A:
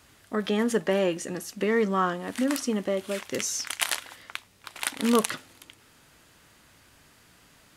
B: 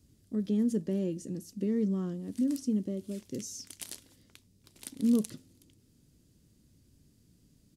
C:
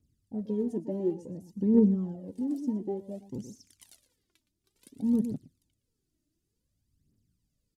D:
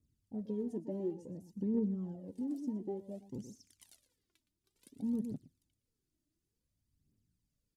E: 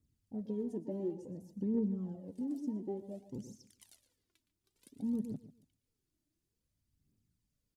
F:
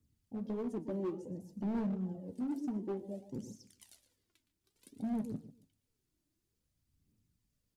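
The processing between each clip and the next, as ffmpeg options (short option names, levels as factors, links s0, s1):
-af "firequalizer=gain_entry='entry(220,0);entry(750,-25);entry(1300,-29);entry(4900,-12)':delay=0.05:min_phase=1"
-af "afwtdn=0.0126,aecho=1:1:116:0.2,aphaser=in_gain=1:out_gain=1:delay=3.4:decay=0.69:speed=0.56:type=triangular"
-af "acompressor=threshold=0.0355:ratio=2,volume=0.531"
-filter_complex "[0:a]asplit=2[s0][s1];[s1]adelay=143,lowpass=f=3700:p=1,volume=0.158,asplit=2[s2][s3];[s3]adelay=143,lowpass=f=3700:p=1,volume=0.24[s4];[s0][s2][s4]amix=inputs=3:normalize=0"
-filter_complex "[0:a]acrossover=split=110[s0][s1];[s1]volume=56.2,asoftclip=hard,volume=0.0178[s2];[s0][s2]amix=inputs=2:normalize=0,flanger=delay=8.6:depth=8.5:regen=-65:speed=1.4:shape=triangular,volume=2"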